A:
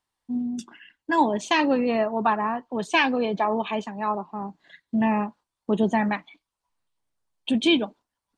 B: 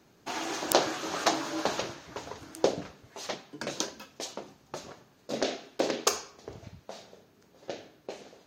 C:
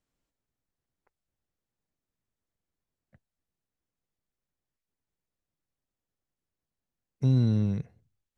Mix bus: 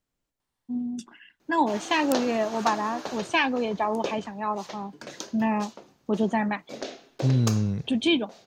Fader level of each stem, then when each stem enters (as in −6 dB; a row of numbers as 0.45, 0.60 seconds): −2.5, −5.5, +1.0 decibels; 0.40, 1.40, 0.00 seconds